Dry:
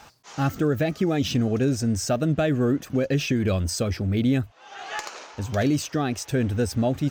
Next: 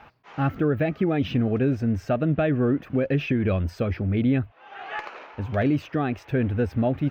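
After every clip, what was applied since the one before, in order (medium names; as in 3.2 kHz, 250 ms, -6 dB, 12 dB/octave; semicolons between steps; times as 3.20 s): FFT filter 2.5 kHz 0 dB, 7.7 kHz -29 dB, 14 kHz -17 dB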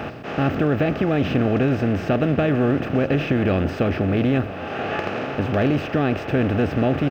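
spectral levelling over time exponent 0.4; delay 984 ms -16 dB; trim -1.5 dB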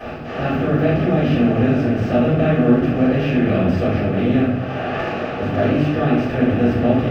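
reverberation RT60 0.75 s, pre-delay 3 ms, DRR -11.5 dB; trim -14 dB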